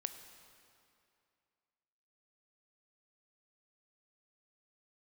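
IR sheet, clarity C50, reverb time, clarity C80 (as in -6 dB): 9.0 dB, 2.5 s, 10.0 dB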